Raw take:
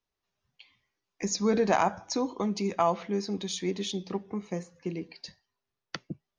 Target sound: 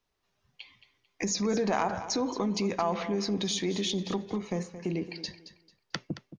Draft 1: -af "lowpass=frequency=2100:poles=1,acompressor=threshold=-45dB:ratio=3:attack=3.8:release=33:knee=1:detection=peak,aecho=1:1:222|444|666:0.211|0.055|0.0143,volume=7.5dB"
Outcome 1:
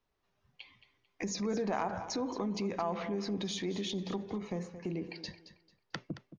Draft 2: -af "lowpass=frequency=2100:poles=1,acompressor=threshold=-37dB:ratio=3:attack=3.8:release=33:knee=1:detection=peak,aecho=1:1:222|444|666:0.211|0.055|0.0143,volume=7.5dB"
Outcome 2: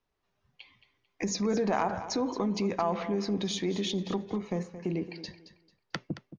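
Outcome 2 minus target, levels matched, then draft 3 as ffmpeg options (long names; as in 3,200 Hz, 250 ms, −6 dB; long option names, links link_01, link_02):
8,000 Hz band −4.0 dB
-af "lowpass=frequency=7200:poles=1,acompressor=threshold=-37dB:ratio=3:attack=3.8:release=33:knee=1:detection=peak,aecho=1:1:222|444|666:0.211|0.055|0.0143,volume=7.5dB"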